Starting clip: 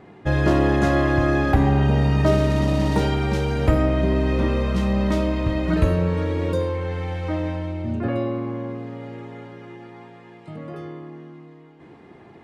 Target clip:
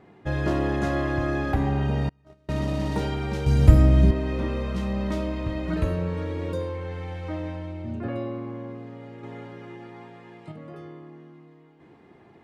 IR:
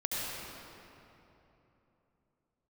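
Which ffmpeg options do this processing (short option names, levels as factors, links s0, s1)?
-filter_complex "[0:a]asettb=1/sr,asplit=3[s0][s1][s2];[s0]atrim=end=2.094[s3];[s1]atrim=start=2.09:end=2.49,asetpts=PTS-STARTPTS,afade=t=in:d=0.004:c=qsin,afade=t=out:st=0.396:d=0.004:c=qsin,agate=range=0.0158:threshold=0.282:ratio=16:detection=peak[s4];[s2]atrim=start=2.486[s5];[s3][s4]acrossfade=d=0.004:c1=hsin:c2=qsin[s6];[s6][s5]acrossfade=d=0.004:c1=qsin:c2=hsin,asettb=1/sr,asplit=3[s7][s8][s9];[s7]atrim=end=3.464[s10];[s8]atrim=start=3.46:end=4.11,asetpts=PTS-STARTPTS,afade=t=in:d=0.004:c=qsin,afade=t=out:st=0.646:d=0.004:c=qsin,bass=f=250:g=13,treble=f=4000:g=11[s11];[s9]atrim=start=4.106[s12];[s10][s11]acrossfade=d=0.004:c1=hsin:c2=qsin[s13];[s13][s12]acrossfade=d=0.004:c1=qsin:c2=hsin,asettb=1/sr,asplit=3[s14][s15][s16];[s14]atrim=end=9.234[s17];[s15]atrim=start=9.23:end=10.52,asetpts=PTS-STARTPTS,afade=t=in:d=0.004:c=qsin,afade=t=out:st=1.286:d=0.004:c=qsin,acontrast=32[s18];[s16]atrim=start=10.516[s19];[s17][s18]acrossfade=d=0.004:c1=hsin:c2=qsin[s20];[s20][s19]acrossfade=d=0.004:c1=qsin:c2=hsin,volume=0.473"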